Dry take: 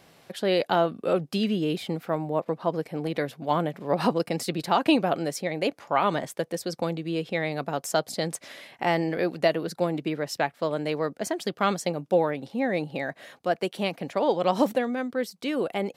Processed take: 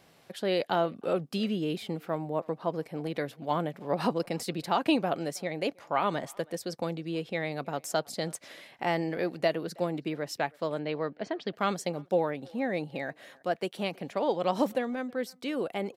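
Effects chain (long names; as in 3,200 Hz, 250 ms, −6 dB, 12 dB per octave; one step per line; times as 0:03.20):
0:10.79–0:11.53: low-pass filter 4,300 Hz 24 dB per octave
far-end echo of a speakerphone 320 ms, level −25 dB
level −4.5 dB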